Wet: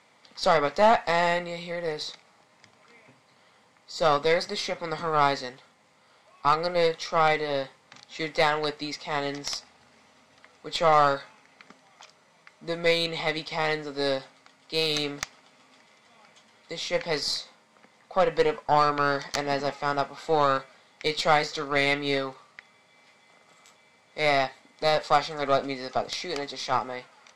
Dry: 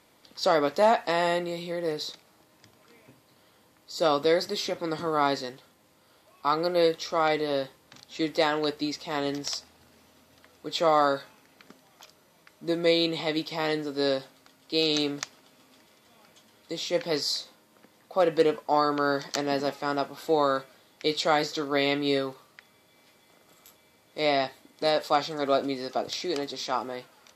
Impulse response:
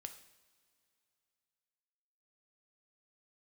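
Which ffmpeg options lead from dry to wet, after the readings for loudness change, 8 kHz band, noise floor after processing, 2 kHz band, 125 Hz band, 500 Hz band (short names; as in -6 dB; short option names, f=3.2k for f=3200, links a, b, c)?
+1.0 dB, +0.5 dB, -61 dBFS, +4.5 dB, +3.0 dB, -0.5 dB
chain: -af "highpass=120,equalizer=f=330:t=q:w=4:g=-10,equalizer=f=810:t=q:w=4:g=4,equalizer=f=1.2k:t=q:w=4:g=4,equalizer=f=2.1k:t=q:w=4:g=7,lowpass=f=8.5k:w=0.5412,lowpass=f=8.5k:w=1.3066,aeval=exprs='0.422*(cos(1*acos(clip(val(0)/0.422,-1,1)))-cos(1*PI/2))+0.0266*(cos(6*acos(clip(val(0)/0.422,-1,1)))-cos(6*PI/2))':c=same"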